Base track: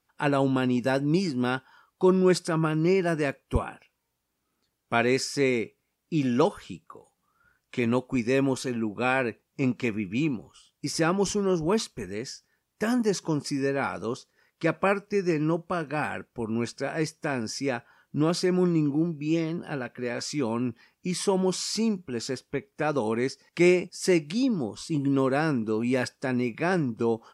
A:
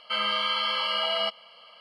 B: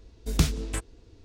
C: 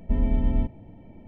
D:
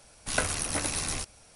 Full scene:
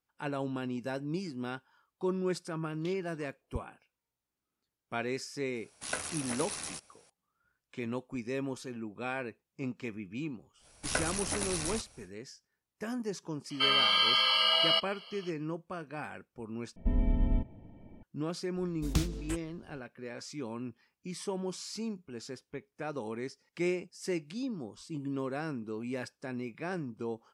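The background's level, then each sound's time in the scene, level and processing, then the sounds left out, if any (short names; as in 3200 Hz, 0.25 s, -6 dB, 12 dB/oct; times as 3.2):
base track -11.5 dB
2.46 add B -12 dB + stepped band-pass 8.4 Hz 640–4000 Hz
5.55 add D -7.5 dB + HPF 250 Hz 6 dB/oct
10.57 add D -4.5 dB, fades 0.10 s
13.5 add A -4.5 dB + high shelf 2500 Hz +11 dB
16.76 replace with C -5.5 dB
18.56 add B -7.5 dB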